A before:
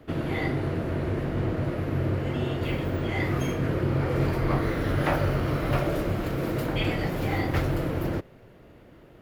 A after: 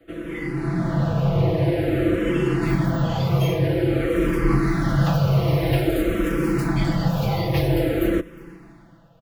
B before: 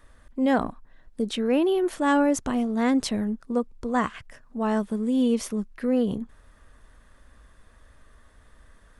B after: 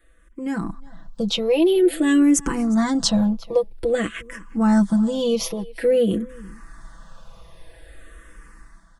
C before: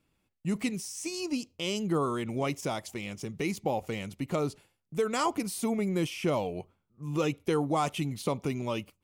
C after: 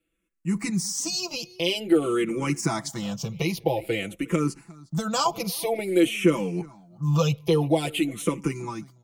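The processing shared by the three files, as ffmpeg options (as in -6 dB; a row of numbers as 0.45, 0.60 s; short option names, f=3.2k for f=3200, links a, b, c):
-filter_complex "[0:a]acrossover=split=350|3000[a][b][c];[b]acompressor=threshold=-32dB:ratio=6[d];[a][d][c]amix=inputs=3:normalize=0,aecho=1:1:6:0.87,dynaudnorm=f=150:g=9:m=14dB,asplit=2[e][f];[f]aecho=0:1:358:0.0708[g];[e][g]amix=inputs=2:normalize=0,asplit=2[h][i];[i]afreqshift=-0.5[j];[h][j]amix=inputs=2:normalize=1,volume=-3dB"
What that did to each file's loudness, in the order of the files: +6.0, +5.0, +6.0 LU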